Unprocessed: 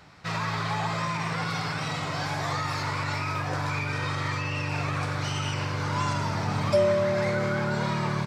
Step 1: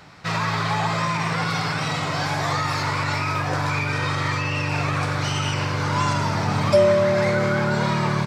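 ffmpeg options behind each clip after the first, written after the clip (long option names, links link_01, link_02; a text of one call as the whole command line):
ffmpeg -i in.wav -af "equalizer=frequency=68:width_type=o:width=0.55:gain=-6.5,volume=6dB" out.wav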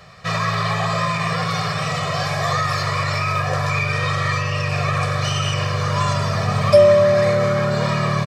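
ffmpeg -i in.wav -af "aecho=1:1:1.7:0.86" out.wav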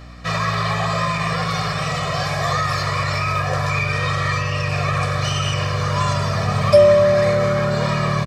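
ffmpeg -i in.wav -af "aeval=exprs='val(0)+0.0126*(sin(2*PI*60*n/s)+sin(2*PI*2*60*n/s)/2+sin(2*PI*3*60*n/s)/3+sin(2*PI*4*60*n/s)/4+sin(2*PI*5*60*n/s)/5)':channel_layout=same" out.wav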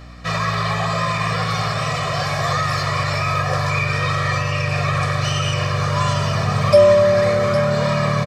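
ffmpeg -i in.wav -af "aecho=1:1:809:0.376" out.wav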